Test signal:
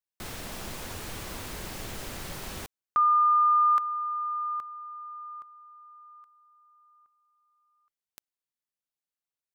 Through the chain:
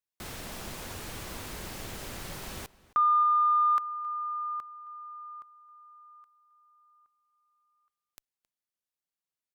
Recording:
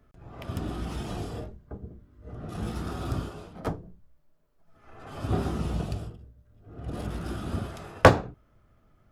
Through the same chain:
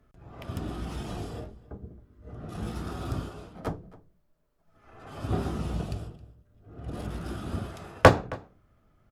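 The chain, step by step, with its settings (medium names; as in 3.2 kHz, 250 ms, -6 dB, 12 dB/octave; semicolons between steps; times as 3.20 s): echo from a far wall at 46 m, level -20 dB; Chebyshev shaper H 7 -32 dB, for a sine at -1 dBFS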